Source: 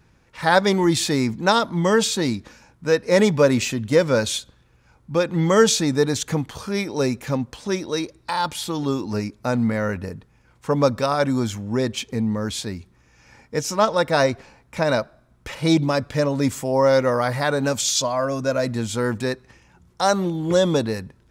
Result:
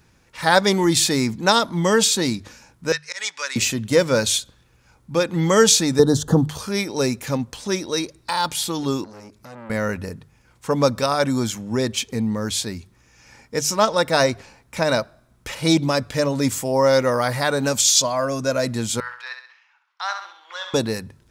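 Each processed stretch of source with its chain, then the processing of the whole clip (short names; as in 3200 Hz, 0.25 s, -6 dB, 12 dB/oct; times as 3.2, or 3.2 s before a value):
2.92–3.56 Chebyshev band-pass 1600–7100 Hz + auto swell 0.137 s
5.99–6.49 Butterworth band-stop 2300 Hz, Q 1.6 + tilt shelf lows +7.5 dB, about 1100 Hz + three-band squash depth 70%
9.04–9.7 compressor 2:1, threshold -41 dBFS + core saturation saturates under 1100 Hz
19–20.74 inverse Chebyshev high-pass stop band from 180 Hz, stop band 80 dB + air absorption 300 m + flutter echo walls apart 11.2 m, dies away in 0.55 s
whole clip: high shelf 3700 Hz +8 dB; notches 50/100/150 Hz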